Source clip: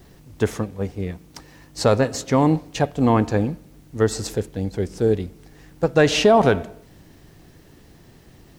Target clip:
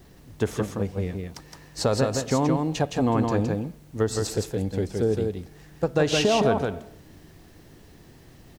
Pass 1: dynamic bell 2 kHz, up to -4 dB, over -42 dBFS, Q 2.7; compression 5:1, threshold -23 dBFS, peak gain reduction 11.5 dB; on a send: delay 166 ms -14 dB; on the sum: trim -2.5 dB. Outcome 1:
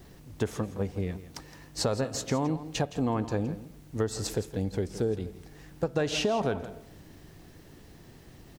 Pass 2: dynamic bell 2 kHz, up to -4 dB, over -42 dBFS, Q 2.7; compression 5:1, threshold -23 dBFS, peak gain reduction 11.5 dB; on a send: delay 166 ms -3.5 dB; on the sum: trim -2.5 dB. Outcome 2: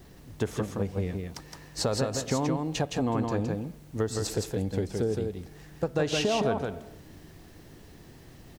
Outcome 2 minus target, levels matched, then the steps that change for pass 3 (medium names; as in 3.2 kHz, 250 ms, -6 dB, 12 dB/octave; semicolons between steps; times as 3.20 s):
compression: peak gain reduction +5.5 dB
change: compression 5:1, threshold -16 dBFS, peak gain reduction 6 dB